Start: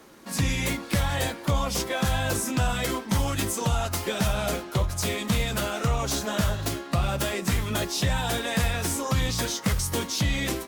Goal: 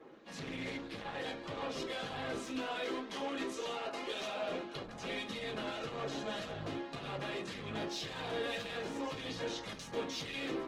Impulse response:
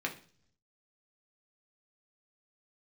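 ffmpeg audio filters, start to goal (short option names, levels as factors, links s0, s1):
-filter_complex "[0:a]asettb=1/sr,asplit=3[s0][s1][s2];[s0]atrim=end=2.434[s3];[s1]atrim=start=2.43:end=4.49,asetpts=PTS-STARTPTS,afade=t=in:d=0.004:c=qsin,afade=t=out:st=2.056:d=0.004:c=qsin,highpass=f=250:w=0.5412,highpass=f=250:w=1.3066[s4];[s2]atrim=start=4.486[s5];[s3][s4]acrossfade=d=0.004:c1=hsin:c2=qsin[s6];[s6][s5]acrossfade=d=0.004:c1=qsin:c2=hsin,asoftclip=type=hard:threshold=0.0355,adynamicsmooth=sensitivity=5:basefreq=2800,acrossover=split=2300[s7][s8];[s7]aeval=exprs='val(0)*(1-0.5/2+0.5/2*cos(2*PI*1.8*n/s))':c=same[s9];[s8]aeval=exprs='val(0)*(1-0.5/2-0.5/2*cos(2*PI*1.8*n/s))':c=same[s10];[s9][s10]amix=inputs=2:normalize=0,asoftclip=type=tanh:threshold=0.0282[s11];[1:a]atrim=start_sample=2205,asetrate=70560,aresample=44100[s12];[s11][s12]afir=irnorm=-1:irlink=0,volume=0.841" -ar 48000 -c:a libopus -b:a 16k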